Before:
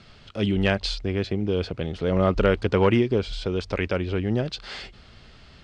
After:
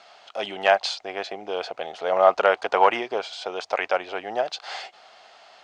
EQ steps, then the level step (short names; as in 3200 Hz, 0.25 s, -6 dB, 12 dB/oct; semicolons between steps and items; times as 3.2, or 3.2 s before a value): bell 6500 Hz +5 dB 0.31 oct; dynamic EQ 1300 Hz, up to +3 dB, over -33 dBFS, Q 0.85; resonant high-pass 730 Hz, resonance Q 4.9; 0.0 dB